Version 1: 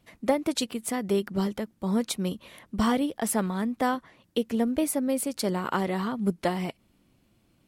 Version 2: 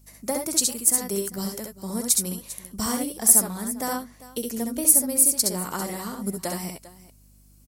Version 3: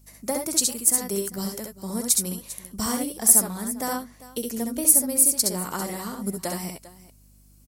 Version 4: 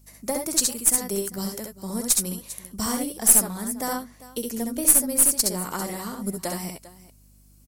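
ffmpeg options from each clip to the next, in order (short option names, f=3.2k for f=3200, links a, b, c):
-af "aecho=1:1:66|78|398:0.631|0.316|0.141,aeval=exprs='val(0)+0.00355*(sin(2*PI*50*n/s)+sin(2*PI*2*50*n/s)/2+sin(2*PI*3*50*n/s)/3+sin(2*PI*4*50*n/s)/4+sin(2*PI*5*50*n/s)/5)':c=same,aexciter=amount=8.2:drive=5.4:freq=4.8k,volume=-5dB"
-af anull
-af "aeval=exprs='0.891*(cos(1*acos(clip(val(0)/0.891,-1,1)))-cos(1*PI/2))+0.0447*(cos(6*acos(clip(val(0)/0.891,-1,1)))-cos(6*PI/2))':c=same"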